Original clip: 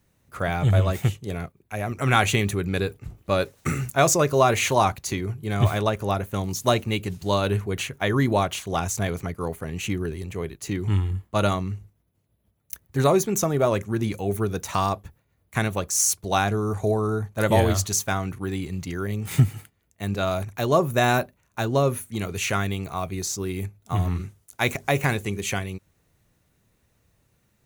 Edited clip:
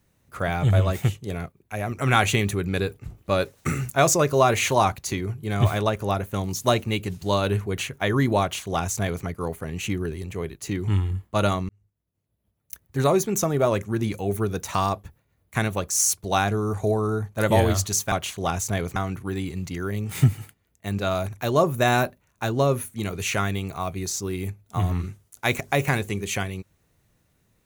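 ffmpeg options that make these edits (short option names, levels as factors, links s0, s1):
-filter_complex "[0:a]asplit=4[s0][s1][s2][s3];[s0]atrim=end=11.69,asetpts=PTS-STARTPTS,afade=t=out:st=11.686:d=0.004:c=hsin[s4];[s1]atrim=start=11.69:end=18.122,asetpts=PTS-STARTPTS,afade=t=in:d=2.03:c=qsin[s5];[s2]atrim=start=8.408:end=9.252[s6];[s3]atrim=start=18.118[s7];[s4][s5]concat=n=2:v=0:a=1[s8];[s8][s6]acrossfade=d=0.004:c1=hsin:c2=hsin[s9];[s9][s7]acrossfade=d=0.004:c1=hsin:c2=hsin"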